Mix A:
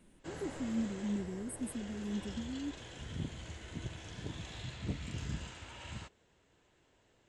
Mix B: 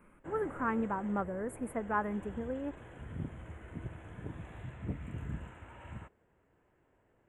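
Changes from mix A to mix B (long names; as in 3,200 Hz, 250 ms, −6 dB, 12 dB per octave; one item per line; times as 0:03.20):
speech: remove linear-phase brick-wall band-stop 410–7,900 Hz
master: add Butterworth band-reject 4,900 Hz, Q 0.53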